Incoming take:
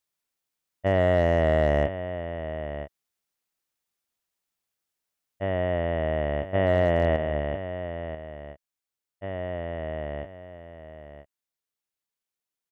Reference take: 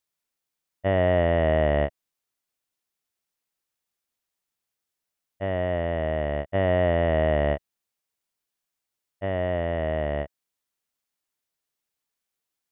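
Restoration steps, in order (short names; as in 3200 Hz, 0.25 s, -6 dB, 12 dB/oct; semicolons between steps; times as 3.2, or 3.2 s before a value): clip repair -13 dBFS; inverse comb 0.987 s -11.5 dB; gain correction +6 dB, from 7.16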